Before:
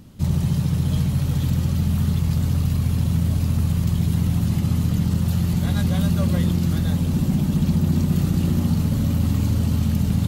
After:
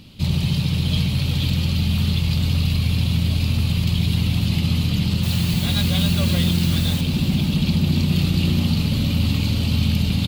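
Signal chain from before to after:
flat-topped bell 3,300 Hz +13.5 dB 1.3 octaves
0:05.23–0:07.01: bit-depth reduction 6 bits, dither triangular
single-tap delay 509 ms −13.5 dB

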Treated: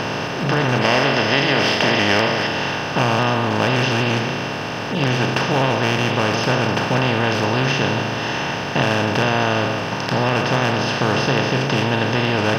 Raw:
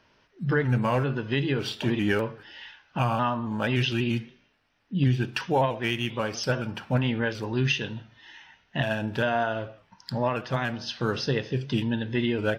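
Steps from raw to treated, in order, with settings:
compressor on every frequency bin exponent 0.2
0:00.81–0:02.47: thirty-one-band graphic EQ 125 Hz −7 dB, 630 Hz +4 dB, 2,000 Hz +8 dB, 3,150 Hz +5 dB, 5,000 Hz +7 dB
level −1.5 dB

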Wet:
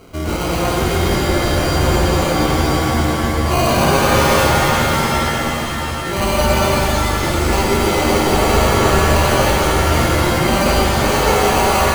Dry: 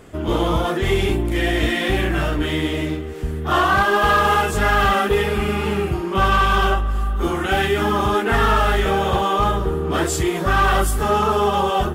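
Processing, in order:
in parallel at +2 dB: brickwall limiter −19 dBFS, peak gain reduction 10 dB
0:04.59–0:06.07: on the sum: guitar amp tone stack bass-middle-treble 10-0-10
decimation without filtering 25×
reverb with rising layers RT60 3.7 s, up +7 semitones, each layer −2 dB, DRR −2 dB
level −6 dB

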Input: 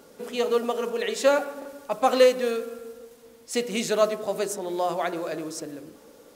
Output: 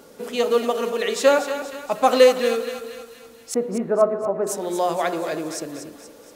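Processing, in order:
0:03.54–0:04.47: low-pass filter 1,300 Hz 24 dB per octave
feedback echo with a high-pass in the loop 237 ms, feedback 51%, high-pass 640 Hz, level −9 dB
level +4 dB

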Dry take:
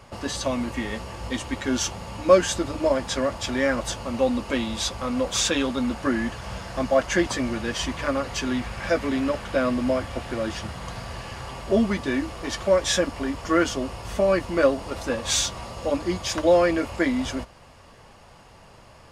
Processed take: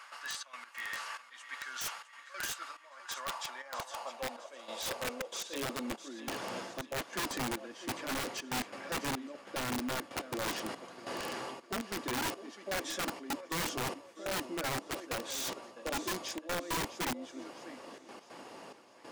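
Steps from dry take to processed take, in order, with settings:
high-pass filter 93 Hz 24 dB per octave
reversed playback
downward compressor 16 to 1, threshold −35 dBFS, peak gain reduction 26 dB
reversed playback
gate pattern "xxxx.x.xxxx...x" 141 BPM −12 dB
on a send: feedback echo with a high-pass in the loop 655 ms, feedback 47%, high-pass 480 Hz, level −12 dB
on the sum: high-pass filter sweep 1,400 Hz → 300 Hz, 0:02.60–0:06.21
wrap-around overflow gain 29.5 dB

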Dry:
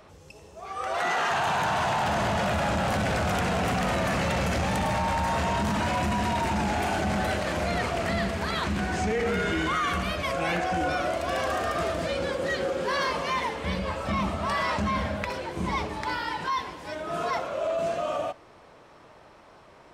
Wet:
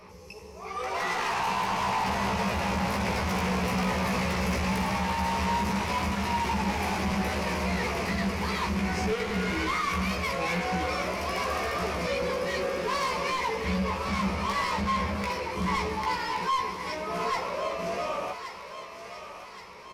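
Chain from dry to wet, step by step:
EQ curve with evenly spaced ripples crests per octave 0.84, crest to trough 10 dB
soft clipping −27 dBFS, distortion −10 dB
double-tracking delay 16 ms −3 dB
on a send: feedback echo with a high-pass in the loop 1,123 ms, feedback 60%, high-pass 960 Hz, level −8 dB

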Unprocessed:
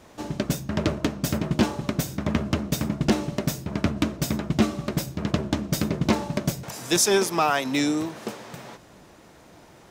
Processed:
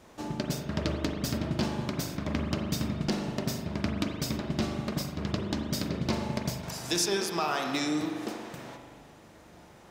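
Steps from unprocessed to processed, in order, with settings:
dynamic equaliser 4,700 Hz, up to +8 dB, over −49 dBFS, Q 2.3
downward compressor 2 to 1, threshold −25 dBFS, peak gain reduction 7 dB
on a send: convolution reverb RT60 1.6 s, pre-delay 40 ms, DRR 2.5 dB
on the sum: level −4.5 dB

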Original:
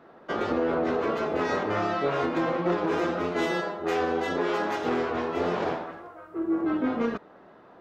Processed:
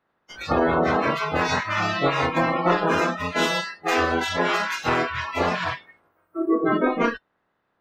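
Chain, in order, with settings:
ceiling on every frequency bin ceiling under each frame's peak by 15 dB
noise reduction from a noise print of the clip's start 27 dB
level +6.5 dB

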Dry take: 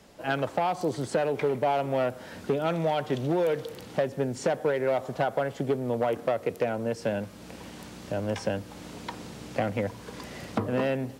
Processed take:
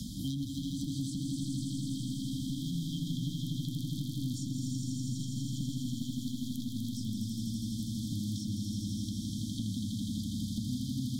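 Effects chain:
parametric band 1,100 Hz −3.5 dB 2.9 octaves
downward compressor 6 to 1, threshold −28 dBFS, peak gain reduction 6 dB
wave folding −26 dBFS
flanger 1.4 Hz, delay 7.6 ms, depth 3.8 ms, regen +76%
linear-phase brick-wall band-stop 300–3,100 Hz
echo that builds up and dies away 82 ms, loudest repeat 5, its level −5 dB
multiband upward and downward compressor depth 100%
level +3 dB

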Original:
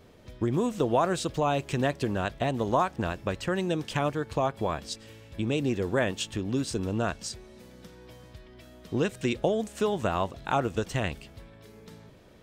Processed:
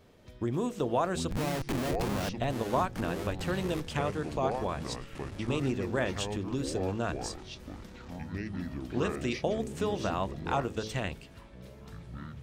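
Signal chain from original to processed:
hum removal 54.26 Hz, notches 10
0:01.31–0:02.35: comparator with hysteresis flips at −34.5 dBFS
delay with pitch and tempo change per echo 568 ms, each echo −6 semitones, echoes 3, each echo −6 dB
level −4 dB

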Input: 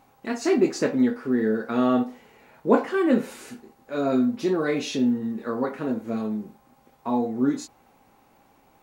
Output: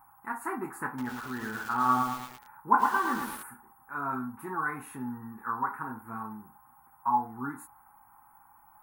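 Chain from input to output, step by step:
drawn EQ curve 120 Hz 0 dB, 200 Hz −9 dB, 350 Hz −11 dB, 590 Hz −23 dB, 860 Hz +12 dB, 1,500 Hz +8 dB, 3,300 Hz −25 dB, 5,800 Hz −29 dB, 9,800 Hz +12 dB
0:00.87–0:03.43: feedback echo at a low word length 111 ms, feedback 55%, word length 6 bits, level −3.5 dB
level −5.5 dB

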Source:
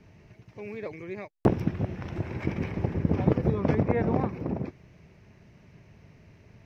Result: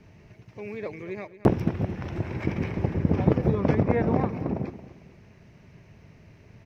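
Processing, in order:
repeating echo 226 ms, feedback 32%, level −14.5 dB
level +2 dB

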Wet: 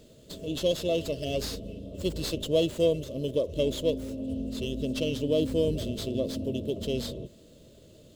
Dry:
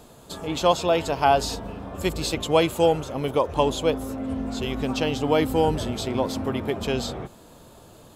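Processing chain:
linear-phase brick-wall band-stop 670–2,600 Hz
windowed peak hold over 3 samples
level −4 dB

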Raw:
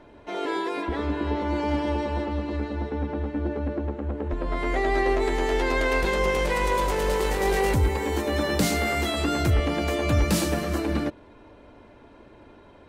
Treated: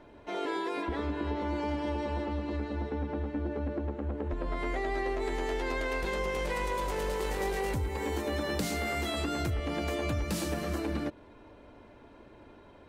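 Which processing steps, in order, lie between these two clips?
downward compressor, threshold −25 dBFS, peak gain reduction 8.5 dB
level −3.5 dB

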